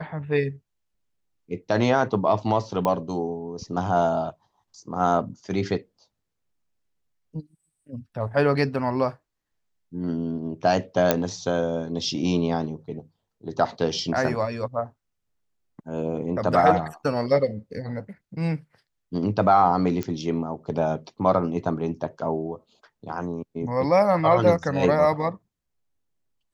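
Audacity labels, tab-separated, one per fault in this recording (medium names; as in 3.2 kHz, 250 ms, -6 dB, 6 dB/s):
2.850000	2.850000	pop -13 dBFS
11.110000	11.110000	pop -4 dBFS
20.030000	20.030000	pop -15 dBFS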